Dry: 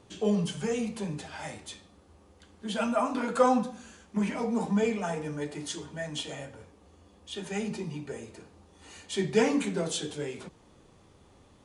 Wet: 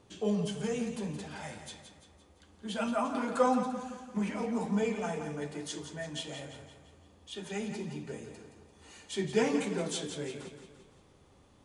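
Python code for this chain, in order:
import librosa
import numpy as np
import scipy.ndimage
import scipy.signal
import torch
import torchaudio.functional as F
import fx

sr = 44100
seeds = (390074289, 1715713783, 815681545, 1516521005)

y = fx.echo_feedback(x, sr, ms=171, feedback_pct=49, wet_db=-9)
y = y * librosa.db_to_amplitude(-4.0)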